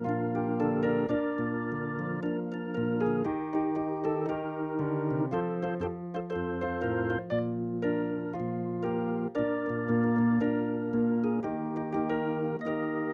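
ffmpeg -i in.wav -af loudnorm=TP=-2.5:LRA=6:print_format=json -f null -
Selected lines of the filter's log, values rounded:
"input_i" : "-30.5",
"input_tp" : "-16.7",
"input_lra" : "2.5",
"input_thresh" : "-40.5",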